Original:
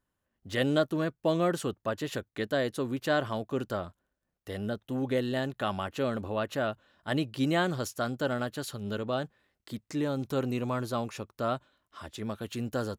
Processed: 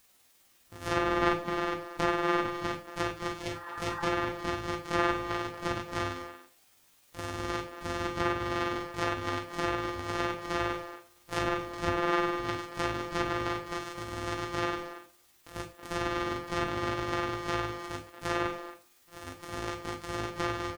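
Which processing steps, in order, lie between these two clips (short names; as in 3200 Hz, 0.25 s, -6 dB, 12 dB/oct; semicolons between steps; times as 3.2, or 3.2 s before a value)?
sample sorter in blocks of 256 samples; bell 170 Hz -11.5 dB 0.33 oct; treble ducked by the level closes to 2700 Hz, closed at -26.5 dBFS; added noise white -66 dBFS; spectral repair 2.14–2.54, 740–1900 Hz both; granular stretch 1.6×, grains 0.102 s; speakerphone echo 0.23 s, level -10 dB; non-linear reverb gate 0.13 s falling, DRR 5 dB; gain +2 dB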